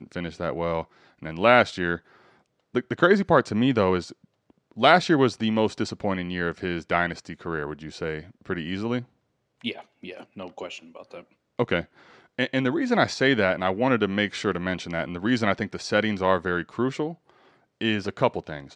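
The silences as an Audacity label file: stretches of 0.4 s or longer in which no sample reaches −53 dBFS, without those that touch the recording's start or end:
9.060000	9.610000	silence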